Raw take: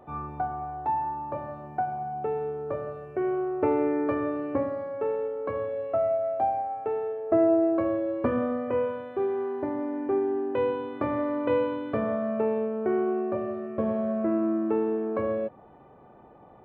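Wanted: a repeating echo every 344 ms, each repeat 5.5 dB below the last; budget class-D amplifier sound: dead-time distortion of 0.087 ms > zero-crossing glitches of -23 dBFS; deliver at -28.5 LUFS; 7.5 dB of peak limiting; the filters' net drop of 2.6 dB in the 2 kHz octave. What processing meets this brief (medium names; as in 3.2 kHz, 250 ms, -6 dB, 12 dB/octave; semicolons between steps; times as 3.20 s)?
peaking EQ 2 kHz -3.5 dB; peak limiter -19 dBFS; feedback delay 344 ms, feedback 53%, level -5.5 dB; dead-time distortion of 0.087 ms; zero-crossing glitches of -23 dBFS; trim -1 dB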